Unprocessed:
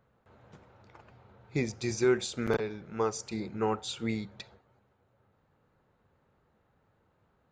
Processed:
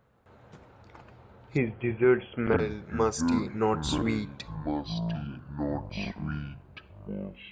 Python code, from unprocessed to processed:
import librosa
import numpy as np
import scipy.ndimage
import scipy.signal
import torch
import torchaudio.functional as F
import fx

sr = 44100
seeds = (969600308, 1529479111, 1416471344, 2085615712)

y = fx.brickwall_lowpass(x, sr, high_hz=3400.0, at=(1.56, 2.58), fade=0.02)
y = fx.echo_pitch(y, sr, ms=178, semitones=-7, count=2, db_per_echo=-6.0)
y = y * librosa.db_to_amplitude(3.5)